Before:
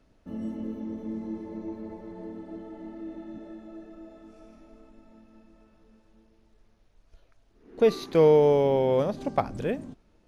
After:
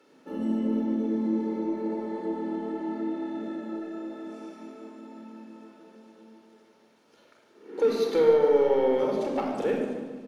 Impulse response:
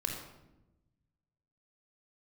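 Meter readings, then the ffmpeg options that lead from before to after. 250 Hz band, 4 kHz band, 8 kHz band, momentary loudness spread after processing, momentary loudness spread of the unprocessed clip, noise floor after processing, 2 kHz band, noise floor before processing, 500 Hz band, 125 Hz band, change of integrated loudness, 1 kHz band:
+4.0 dB, -0.5 dB, no reading, 23 LU, 22 LU, -61 dBFS, +1.5 dB, -63 dBFS, 0.0 dB, -9.0 dB, -1.5 dB, -1.0 dB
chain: -filter_complex "[0:a]highpass=f=230:w=0.5412,highpass=f=230:w=1.3066,acompressor=threshold=0.0126:ratio=2,asoftclip=type=tanh:threshold=0.0531,aecho=1:1:147|294|441|588|735:0.237|0.126|0.0666|0.0353|0.0187[s0];[1:a]atrim=start_sample=2205,asetrate=36162,aresample=44100[s1];[s0][s1]afir=irnorm=-1:irlink=0,volume=1.88"

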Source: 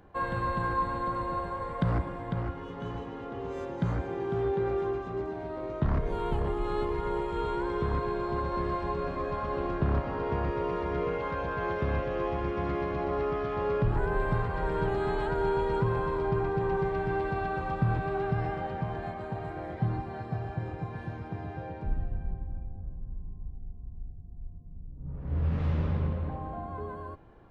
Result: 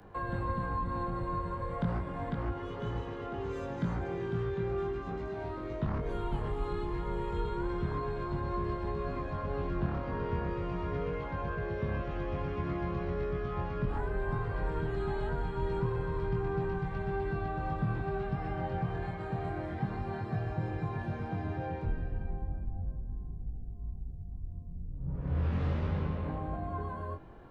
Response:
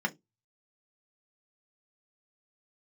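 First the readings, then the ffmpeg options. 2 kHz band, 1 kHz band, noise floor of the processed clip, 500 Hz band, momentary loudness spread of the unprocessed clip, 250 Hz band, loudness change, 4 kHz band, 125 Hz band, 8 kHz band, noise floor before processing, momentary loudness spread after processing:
-4.5 dB, -5.5 dB, -40 dBFS, -5.5 dB, 12 LU, -2.5 dB, -4.0 dB, -4.0 dB, -2.0 dB, no reading, -42 dBFS, 6 LU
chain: -filter_complex "[0:a]acrossover=split=220|1200[s0][s1][s2];[s0]acompressor=threshold=0.02:ratio=4[s3];[s1]acompressor=threshold=0.00891:ratio=4[s4];[s2]acompressor=threshold=0.00251:ratio=4[s5];[s3][s4][s5]amix=inputs=3:normalize=0,acrossover=split=240|990[s6][s7][s8];[s7]asoftclip=type=tanh:threshold=0.015[s9];[s6][s9][s8]amix=inputs=3:normalize=0,flanger=delay=19.5:depth=4:speed=0.34,volume=2.11"

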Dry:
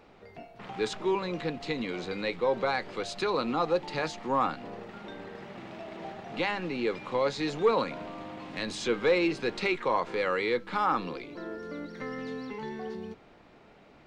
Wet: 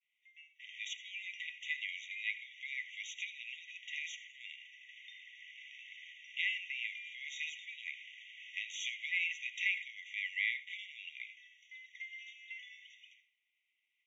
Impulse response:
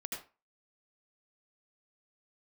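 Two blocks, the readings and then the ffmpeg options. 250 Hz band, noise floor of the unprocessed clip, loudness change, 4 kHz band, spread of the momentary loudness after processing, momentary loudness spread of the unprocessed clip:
under -40 dB, -56 dBFS, -9.0 dB, -4.0 dB, 18 LU, 16 LU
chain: -filter_complex "[0:a]agate=range=0.0224:threshold=0.00631:ratio=3:detection=peak,alimiter=limit=0.0891:level=0:latency=1:release=34,highpass=f=300:w=0.5412,highpass=f=300:w=1.3066,equalizer=f=370:t=q:w=4:g=-9,equalizer=f=1400:t=q:w=4:g=6,equalizer=f=2300:t=q:w=4:g=-6,equalizer=f=3700:t=q:w=4:g=-9,lowpass=f=5200:w=0.5412,lowpass=f=5200:w=1.3066,asplit=2[s0][s1];[1:a]atrim=start_sample=2205[s2];[s1][s2]afir=irnorm=-1:irlink=0,volume=0.299[s3];[s0][s3]amix=inputs=2:normalize=0,afftfilt=real='re*eq(mod(floor(b*sr/1024/1900),2),1)':imag='im*eq(mod(floor(b*sr/1024/1900),2),1)':win_size=1024:overlap=0.75,volume=1.78"

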